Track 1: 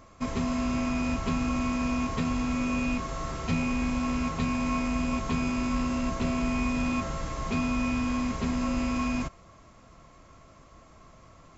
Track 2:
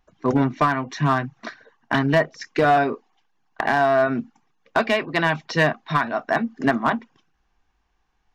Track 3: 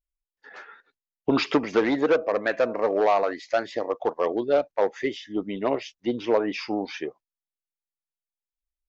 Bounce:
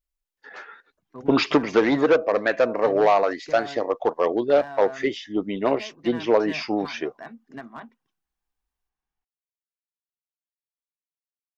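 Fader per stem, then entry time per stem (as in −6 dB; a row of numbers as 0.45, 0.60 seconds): muted, −19.0 dB, +3.0 dB; muted, 0.90 s, 0.00 s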